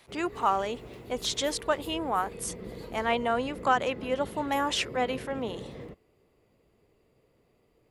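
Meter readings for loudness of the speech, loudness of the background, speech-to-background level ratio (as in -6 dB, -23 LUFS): -30.0 LUFS, -43.0 LUFS, 13.0 dB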